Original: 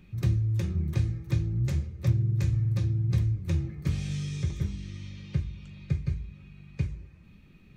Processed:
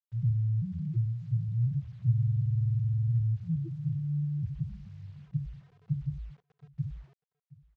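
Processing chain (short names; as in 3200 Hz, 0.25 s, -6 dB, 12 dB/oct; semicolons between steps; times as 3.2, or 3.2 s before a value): Wiener smoothing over 25 samples; gate -41 dBFS, range -20 dB; band shelf 650 Hz +10.5 dB; comb 6.5 ms, depth 60%; de-hum 68.2 Hz, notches 21; in parallel at -2.5 dB: compressor 6:1, threshold -34 dBFS, peak gain reduction 15.5 dB; on the sum: loudest bins only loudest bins 2; bit-crush 10-bit; air absorption 150 m; on a send: echo 0.721 s -21.5 dB; on the sum: gain -2.5 dB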